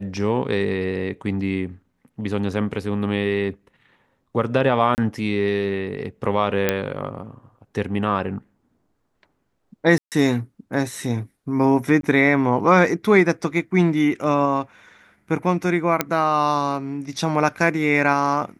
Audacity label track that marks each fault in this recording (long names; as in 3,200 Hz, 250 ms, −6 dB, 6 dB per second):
4.950000	4.980000	drop-out 29 ms
6.690000	6.690000	click −4 dBFS
9.980000	10.120000	drop-out 138 ms
12.010000	12.030000	drop-out 22 ms
16.010000	16.010000	click −3 dBFS